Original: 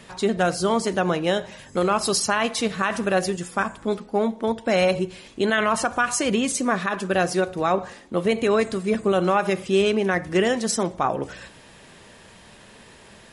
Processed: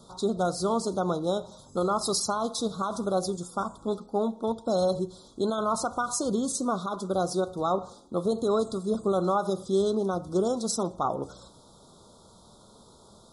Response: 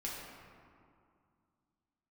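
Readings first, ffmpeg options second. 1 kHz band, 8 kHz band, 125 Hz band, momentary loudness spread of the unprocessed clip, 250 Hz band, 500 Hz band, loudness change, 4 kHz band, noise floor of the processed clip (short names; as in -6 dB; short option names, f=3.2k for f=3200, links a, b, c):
-5.0 dB, -5.0 dB, -5.0 dB, 6 LU, -5.0 dB, -5.0 dB, -5.5 dB, -8.0 dB, -55 dBFS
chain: -af "asuperstop=centerf=2200:order=20:qfactor=1.1,volume=-5dB"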